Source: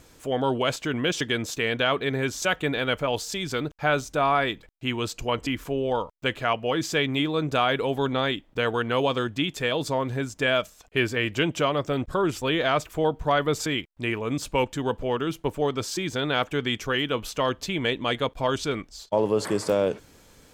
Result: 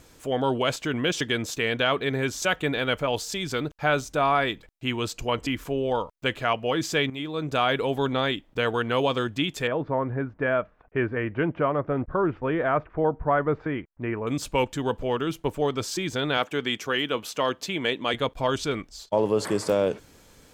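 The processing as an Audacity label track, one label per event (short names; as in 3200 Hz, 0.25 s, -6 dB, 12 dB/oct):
7.100000	7.670000	fade in, from -12 dB
9.670000	14.270000	LPF 1800 Hz 24 dB/oct
16.370000	18.140000	Bessel high-pass 200 Hz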